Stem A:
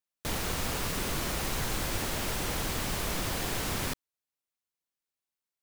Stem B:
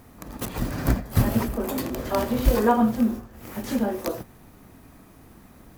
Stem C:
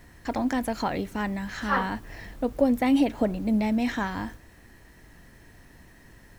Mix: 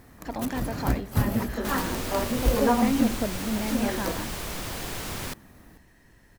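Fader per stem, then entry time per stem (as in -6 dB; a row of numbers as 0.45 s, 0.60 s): -1.5 dB, -3.5 dB, -5.0 dB; 1.40 s, 0.00 s, 0.00 s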